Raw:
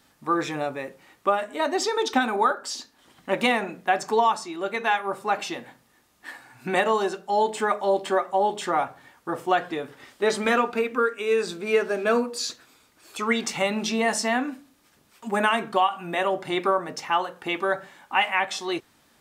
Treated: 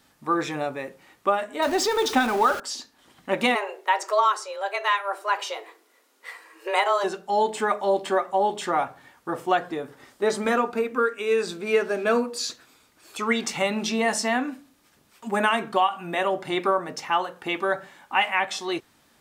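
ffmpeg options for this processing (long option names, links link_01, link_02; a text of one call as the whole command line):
ffmpeg -i in.wav -filter_complex "[0:a]asettb=1/sr,asplit=3[link_01][link_02][link_03];[link_01]atrim=end=1.624[link_04];[link_02]atrim=start=1.62:end=2.6,asetpts=PTS-STARTPTS,afade=type=in:duration=0.004:curve=qsin,afade=type=out:start_time=0.976:duration=0.004:curve=qsin,aeval=exprs='val(0)+0.5*0.0335*sgn(val(0))':channel_layout=same[link_05];[link_03]atrim=start=2.596[link_06];[link_04][link_05]acrossfade=duration=0.004:curve1=hsin:curve2=qsin[link_07];[link_07][link_06]acrossfade=duration=0.004:curve1=qsin:curve2=hsin,asplit=3[link_08][link_09][link_10];[link_08]afade=type=out:start_time=3.54:duration=0.02[link_11];[link_09]afreqshift=200,afade=type=in:start_time=3.54:duration=0.02,afade=type=out:start_time=7.03:duration=0.02[link_12];[link_10]afade=type=in:start_time=7.03:duration=0.02[link_13];[link_11][link_12][link_13]amix=inputs=3:normalize=0,asettb=1/sr,asplit=3[link_14][link_15][link_16];[link_14]atrim=end=9.574[link_17];[link_15]atrim=start=9.57:end=10.96,asetpts=PTS-STARTPTS,afade=type=in:duration=0.004:curve=qsin,afade=type=out:start_time=1.386:duration=0.004:curve=qsin,equalizer=frequency=2800:width=0.97:gain=-6[link_18];[link_16]atrim=start=10.956[link_19];[link_17][link_18]acrossfade=duration=0.004:curve1=hsin:curve2=qsin[link_20];[link_20][link_19]acrossfade=duration=0.004:curve1=qsin:curve2=hsin" out.wav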